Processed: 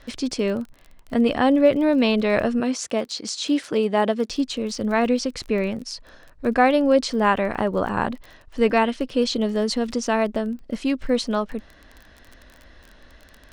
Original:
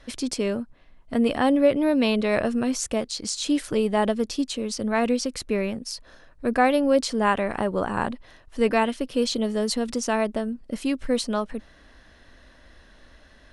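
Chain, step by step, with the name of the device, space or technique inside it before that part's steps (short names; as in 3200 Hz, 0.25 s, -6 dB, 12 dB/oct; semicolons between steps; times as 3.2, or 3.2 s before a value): 2.6–4.3 HPF 200 Hz 12 dB/oct; lo-fi chain (LPF 6000 Hz 12 dB/oct; wow and flutter 15 cents; crackle 24/s -35 dBFS); gain +2.5 dB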